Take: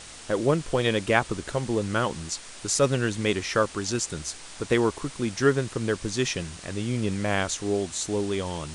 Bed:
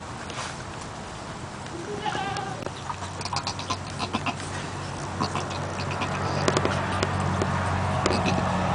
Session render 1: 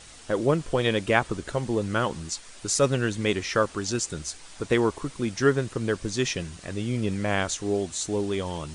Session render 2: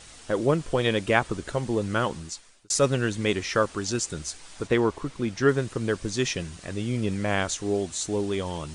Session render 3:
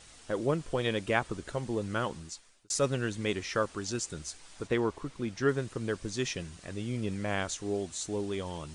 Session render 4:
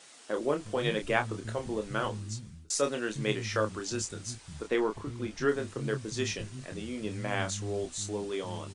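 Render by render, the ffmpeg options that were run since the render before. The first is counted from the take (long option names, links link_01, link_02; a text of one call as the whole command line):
ffmpeg -i in.wav -af "afftdn=noise_reduction=6:noise_floor=-44" out.wav
ffmpeg -i in.wav -filter_complex "[0:a]asettb=1/sr,asplit=3[link_01][link_02][link_03];[link_01]atrim=end=4.674[link_04];[link_02]atrim=start=4.67:end=5.49,asetpts=PTS-STARTPTS,afade=type=in:duration=0.004:curve=qsin,afade=type=out:start_time=0.816:duration=0.004:curve=qsin,highshelf=frequency=7000:gain=-10.5[link_05];[link_03]atrim=start=5.486[link_06];[link_04][link_05]acrossfade=duration=0.004:curve1=hsin:curve2=qsin[link_07];[link_07][link_06]acrossfade=duration=0.004:curve1=qsin:curve2=hsin,asplit=2[link_08][link_09];[link_08]atrim=end=2.7,asetpts=PTS-STARTPTS,afade=type=out:start_time=2.08:duration=0.62[link_10];[link_09]atrim=start=2.7,asetpts=PTS-STARTPTS,afade=type=in:duration=0.004:curve=hsin[link_11];[link_10][link_11]concat=n=2:v=0:a=1" out.wav
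ffmpeg -i in.wav -af "volume=-6.5dB" out.wav
ffmpeg -i in.wav -filter_complex "[0:a]asplit=2[link_01][link_02];[link_02]adelay=28,volume=-6.5dB[link_03];[link_01][link_03]amix=inputs=2:normalize=0,acrossover=split=190[link_04][link_05];[link_04]adelay=360[link_06];[link_06][link_05]amix=inputs=2:normalize=0" out.wav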